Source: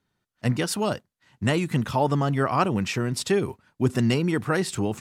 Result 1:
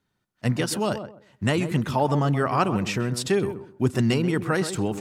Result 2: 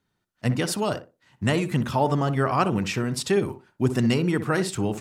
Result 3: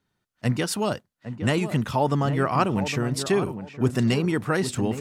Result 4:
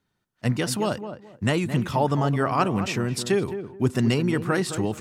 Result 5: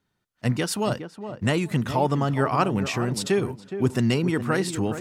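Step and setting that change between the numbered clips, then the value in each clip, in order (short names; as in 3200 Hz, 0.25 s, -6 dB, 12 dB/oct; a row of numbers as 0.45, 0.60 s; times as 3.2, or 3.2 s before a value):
tape echo, time: 131, 62, 810, 216, 417 ms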